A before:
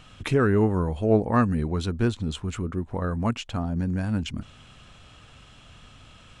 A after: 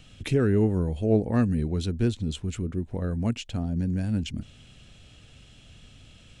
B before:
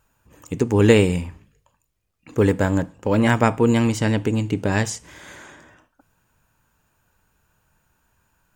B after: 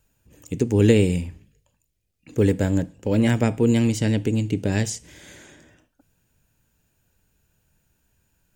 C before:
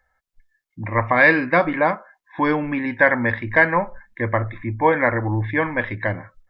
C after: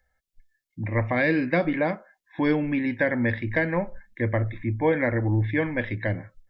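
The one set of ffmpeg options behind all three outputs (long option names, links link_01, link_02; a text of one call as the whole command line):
ffmpeg -i in.wav -filter_complex "[0:a]equalizer=frequency=1100:width=1.2:gain=-14,acrossover=split=490[link_01][link_02];[link_02]acompressor=threshold=-22dB:ratio=6[link_03];[link_01][link_03]amix=inputs=2:normalize=0" out.wav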